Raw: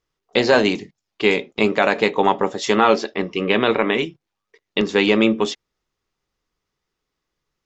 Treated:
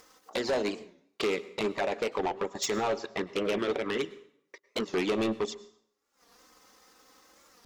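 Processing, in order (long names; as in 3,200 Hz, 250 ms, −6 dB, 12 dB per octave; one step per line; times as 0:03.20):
high-pass filter 690 Hz 6 dB per octave
parametric band 2,800 Hz −9 dB 1.5 octaves
transient designer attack +7 dB, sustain −11 dB
in parallel at +1 dB: downward compressor, threshold −25 dBFS, peak gain reduction 13.5 dB
on the sum: brickwall limiter −9 dBFS, peak gain reduction 9.5 dB
upward compression, threshold −37 dBFS
flanger swept by the level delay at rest 4 ms, full sweep at −16.5 dBFS
soft clipping −24 dBFS, distortion −8 dB
on a send at −18 dB: convolution reverb RT60 0.65 s, pre-delay 93 ms
on the sum: wow of a warped record 45 rpm, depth 160 cents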